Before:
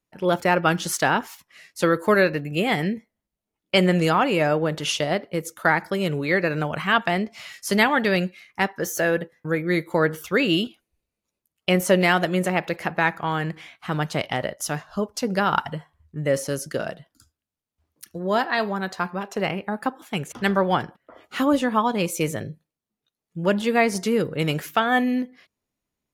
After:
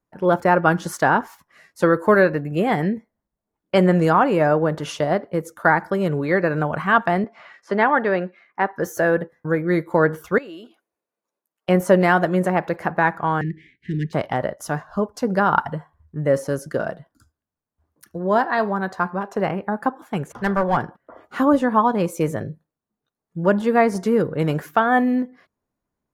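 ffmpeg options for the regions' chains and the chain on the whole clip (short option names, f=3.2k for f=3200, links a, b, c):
-filter_complex "[0:a]asettb=1/sr,asplit=3[a][b][c];[a]atrim=end=7.244[d];[b]atrim=start=7.24:end=8.73,asetpts=PTS-STARTPTS,afade=t=in:d=0.004:c=qsin,afade=t=out:st=1.486:d=0.004:c=qsin,highpass=170,lowpass=6.2k,bass=f=250:g=-7,treble=f=4k:g=-14[e];[c]atrim=start=8.726[f];[d][e]acrossfade=d=0.004:c1=hsin:c2=qsin[g];[g][f]acrossfade=d=0.004:c1=qsin:c2=hsin,asettb=1/sr,asplit=3[h][i][j];[h]atrim=end=10.384[k];[i]atrim=start=10.38:end=11.69,asetpts=PTS-STARTPTS,afade=t=in:d=0.004:c=qsin,afade=t=out:st=1.306:d=0.004:c=qsin,highpass=380,acompressor=threshold=-41dB:ratio=2.5:attack=3.2:release=140:knee=1:detection=peak[l];[j]atrim=start=11.686[m];[k][l]acrossfade=d=0.004:c1=hsin:c2=qsin[n];[n][m]acrossfade=d=0.004:c1=qsin:c2=hsin,asettb=1/sr,asplit=3[o][p][q];[o]atrim=end=13.414[r];[p]atrim=start=13.41:end=14.13,asetpts=PTS-STARTPTS,afade=t=in:d=0.004:c=qsin,afade=t=out:st=0.716:d=0.004:c=qsin,adynamicsmooth=sensitivity=2.5:basefreq=2.8k,asuperstop=centerf=870:order=20:qfactor=0.64[s];[q]atrim=start=14.126[t];[r][s]acrossfade=d=0.004:c1=hsin:c2=qsin[u];[u][t]acrossfade=d=0.004:c1=qsin:c2=hsin,asettb=1/sr,asplit=3[v][w][x];[v]atrim=end=20.344[y];[w]atrim=start=20.34:end=20.77,asetpts=PTS-STARTPTS,afade=t=in:d=0.004:c=qsin,afade=t=out:st=0.426:d=0.004:c=qsin,equalizer=f=280:t=o:w=0.51:g=-11.5,aeval=exprs='clip(val(0),-1,0.0841)':c=same[z];[x]atrim=start=20.766[aa];[y][z]acrossfade=d=0.004:c1=hsin:c2=qsin[ab];[ab][aa]acrossfade=d=0.004:c1=qsin:c2=hsin,highshelf=f=1.9k:t=q:w=1.5:g=-9.5,bandreject=f=1.3k:w=15,volume=3dB"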